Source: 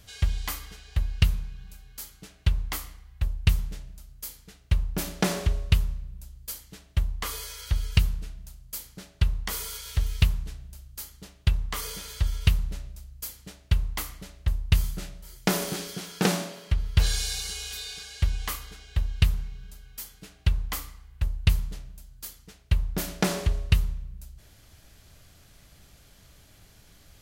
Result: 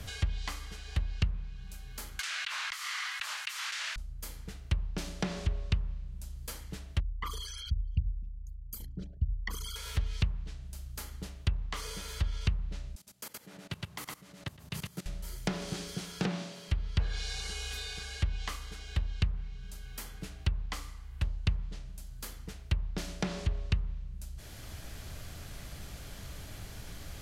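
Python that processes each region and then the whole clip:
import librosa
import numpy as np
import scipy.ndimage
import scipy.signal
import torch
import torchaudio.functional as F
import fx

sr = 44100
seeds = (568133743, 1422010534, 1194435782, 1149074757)

y = fx.chain(x, sr, fx.highpass(hz=1300.0, slope=24),
    fx.env_flatten(amount_pct=100), at=(2.19, 3.96))
y = fx.chain(y, sr, fx.envelope_sharpen(power=3.0),
    fx.hum_notches(base_hz=50, count=6), at=(7.0, 9.76))
y = fx.chain(y, sr, fx.highpass(hz=160.0, slope=24),
    fx.echo_single(ms=114, db=-3.5),
    fx.level_steps(step_db=19), at=(12.95, 15.06))
y = fx.env_lowpass_down(y, sr, base_hz=1700.0, full_db=-17.0)
y = fx.band_squash(y, sr, depth_pct=70)
y = F.gain(torch.from_numpy(y), -5.0).numpy()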